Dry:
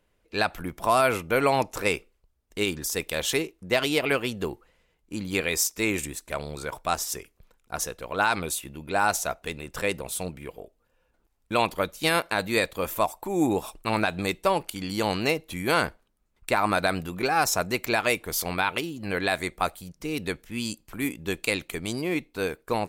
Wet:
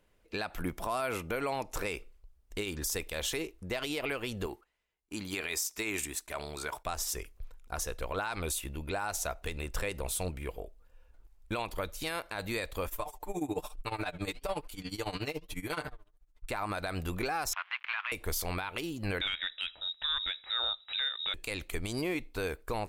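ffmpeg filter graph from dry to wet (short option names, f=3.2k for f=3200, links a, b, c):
-filter_complex "[0:a]asettb=1/sr,asplit=3[a][b][c];[a]atrim=end=4.464[d];[b]atrim=start=4.46:end=6.86,asetpts=PTS-STARTPTS,afade=t=in:d=0.004:c=qsin,afade=t=out:st=2.396:d=0.004:c=qsin,highpass=f=310:p=1,agate=range=-14dB:threshold=-59dB:ratio=16:release=100:detection=peak,bandreject=f=510:w=5.2[e];[c]atrim=start=6.856[f];[d][e]acrossfade=d=0.004:c1=hsin:c2=qsin[g];[g][f]acrossfade=d=0.004:c1=qsin:c2=hsin,asettb=1/sr,asplit=3[h][i][j];[h]atrim=end=12.874[k];[i]atrim=start=12.87:end=16.51,asetpts=PTS-STARTPTS,afade=t=in:d=0.004:c=qsin,afade=t=out:st=3.636:d=0.004:c=qsin,flanger=delay=3.4:depth=6.7:regen=86:speed=1.1:shape=triangular,aecho=1:1:6.7:0.73,atrim=end_sample=160524,tremolo=f=14:d=0.87[l];[j]atrim=start=16.506[m];[k][l]acrossfade=d=0.004:c1=hsin:c2=qsin[n];[n][m]acrossfade=d=0.004:c1=qsin:c2=hsin,asettb=1/sr,asplit=3[o][p][q];[o]atrim=end=17.534[r];[p]atrim=start=17.53:end=18.12,asetpts=PTS-STARTPTS,afade=t=in:d=0.004:c=qsin,afade=t=out:st=0.586:d=0.004:c=qsin,acrusher=bits=5:dc=4:mix=0:aa=0.000001,asuperpass=centerf=1800:order=8:qfactor=0.82[s];[q]atrim=start=18.116[t];[r][s]acrossfade=d=0.004:c1=hsin:c2=qsin[u];[u][t]acrossfade=d=0.004:c1=qsin:c2=hsin,asettb=1/sr,asplit=3[v][w][x];[v]atrim=end=19.214[y];[w]atrim=start=19.21:end=21.34,asetpts=PTS-STARTPTS,afade=t=in:d=0.004:c=qsin,afade=t=out:st=2.126:d=0.004:c=qsin,lowpass=f=3.3k:t=q:w=0.5098,lowpass=f=3.3k:t=q:w=0.6013,lowpass=f=3.3k:t=q:w=0.9,lowpass=f=3.3k:t=q:w=2.563,afreqshift=-3900,acontrast=62[z];[x]atrim=start=21.336[aa];[y][z]acrossfade=d=0.004:c1=hsin:c2=qsin[ab];[ab][aa]acrossfade=d=0.004:c1=qsin:c2=hsin,asubboost=boost=7:cutoff=60,acompressor=threshold=-27dB:ratio=5,alimiter=limit=-23dB:level=0:latency=1:release=70"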